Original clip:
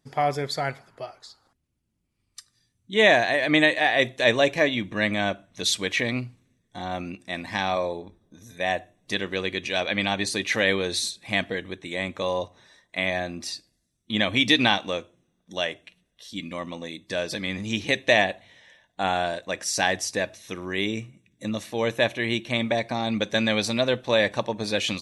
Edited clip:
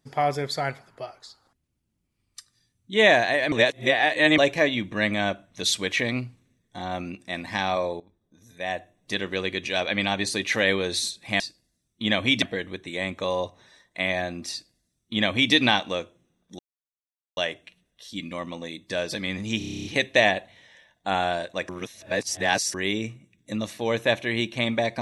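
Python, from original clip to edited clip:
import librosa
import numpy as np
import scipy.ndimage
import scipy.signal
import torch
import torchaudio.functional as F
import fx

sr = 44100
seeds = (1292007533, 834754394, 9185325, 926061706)

y = fx.edit(x, sr, fx.reverse_span(start_s=3.52, length_s=0.86),
    fx.fade_in_from(start_s=8.0, length_s=1.28, floor_db=-15.5),
    fx.duplicate(start_s=13.49, length_s=1.02, to_s=11.4),
    fx.insert_silence(at_s=15.57, length_s=0.78),
    fx.stutter(start_s=17.78, slice_s=0.03, count=10),
    fx.reverse_span(start_s=19.62, length_s=1.05), tone=tone)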